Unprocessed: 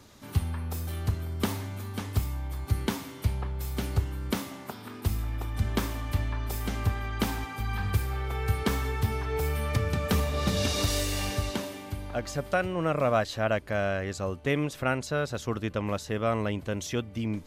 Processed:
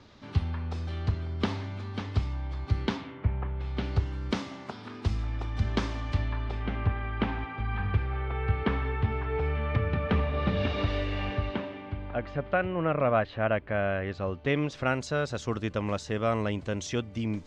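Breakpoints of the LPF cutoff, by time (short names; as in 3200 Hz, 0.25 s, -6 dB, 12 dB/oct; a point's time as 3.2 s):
LPF 24 dB/oct
2.93 s 4800 Hz
3.25 s 2100 Hz
4.07 s 5600 Hz
6.11 s 5600 Hz
6.7 s 2900 Hz
13.87 s 2900 Hz
15.03 s 7400 Hz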